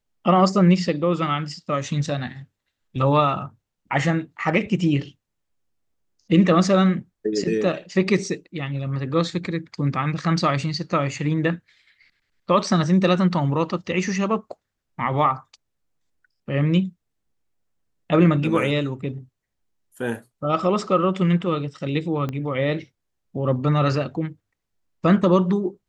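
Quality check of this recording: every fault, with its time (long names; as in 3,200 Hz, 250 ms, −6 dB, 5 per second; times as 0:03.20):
0:22.29: click −16 dBFS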